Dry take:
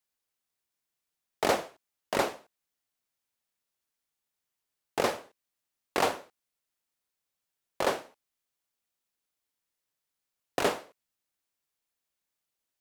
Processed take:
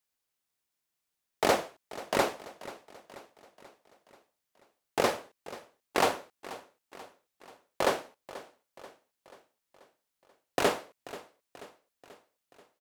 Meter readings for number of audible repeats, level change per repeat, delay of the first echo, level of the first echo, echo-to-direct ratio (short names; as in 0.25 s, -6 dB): 4, -5.5 dB, 0.485 s, -17.0 dB, -15.5 dB